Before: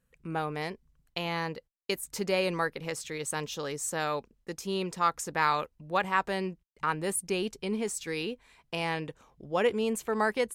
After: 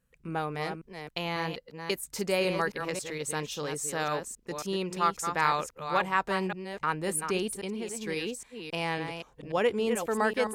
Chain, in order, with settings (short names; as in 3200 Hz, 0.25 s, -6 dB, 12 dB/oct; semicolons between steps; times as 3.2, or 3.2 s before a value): reverse delay 0.272 s, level -7 dB; 7.5–8.07 compressor 5:1, threshold -32 dBFS, peak gain reduction 6 dB